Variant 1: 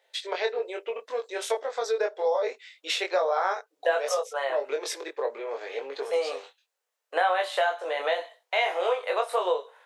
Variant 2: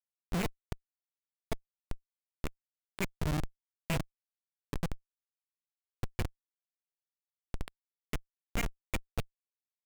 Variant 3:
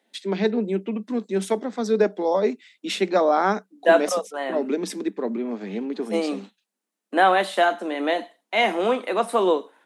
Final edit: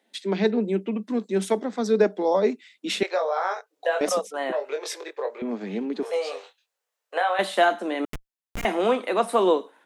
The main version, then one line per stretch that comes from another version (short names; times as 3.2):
3
3.03–4.01 from 1
4.52–5.42 from 1
6.03–7.39 from 1
8.05–8.65 from 2